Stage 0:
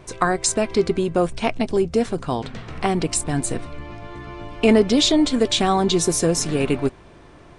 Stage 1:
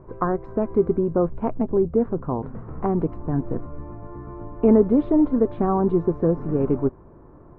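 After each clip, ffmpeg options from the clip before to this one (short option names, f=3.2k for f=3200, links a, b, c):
-af "lowpass=f=1.1k:w=0.5412,lowpass=f=1.1k:w=1.3066,equalizer=f=710:t=o:w=0.44:g=-6.5"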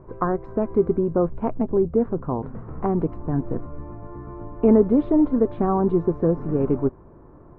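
-af anull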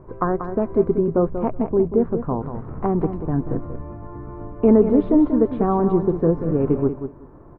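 -af "aecho=1:1:187|374:0.355|0.0568,volume=1.5dB"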